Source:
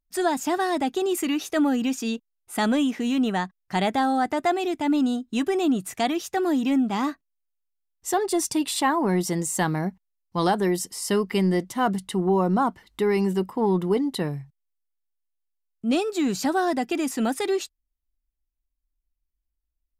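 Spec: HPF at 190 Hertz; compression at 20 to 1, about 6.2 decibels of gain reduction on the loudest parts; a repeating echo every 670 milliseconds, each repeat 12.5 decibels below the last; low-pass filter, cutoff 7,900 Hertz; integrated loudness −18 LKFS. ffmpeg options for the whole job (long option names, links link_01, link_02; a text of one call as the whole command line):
ffmpeg -i in.wav -af "highpass=190,lowpass=7900,acompressor=threshold=-24dB:ratio=20,aecho=1:1:670|1340|2010:0.237|0.0569|0.0137,volume=11.5dB" out.wav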